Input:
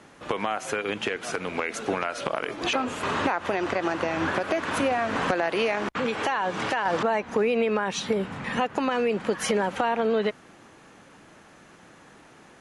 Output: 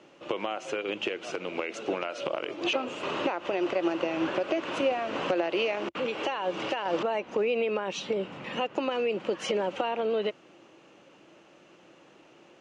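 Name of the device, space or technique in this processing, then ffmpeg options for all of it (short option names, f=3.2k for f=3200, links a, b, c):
car door speaker: -af "highpass=89,equalizer=f=93:t=q:w=4:g=-10,equalizer=f=230:t=q:w=4:g=-3,equalizer=f=340:t=q:w=4:g=9,equalizer=f=560:t=q:w=4:g=8,equalizer=f=1.7k:t=q:w=4:g=-5,equalizer=f=2.8k:t=q:w=4:g=9,lowpass=f=7.1k:w=0.5412,lowpass=f=7.1k:w=1.3066,volume=-7dB"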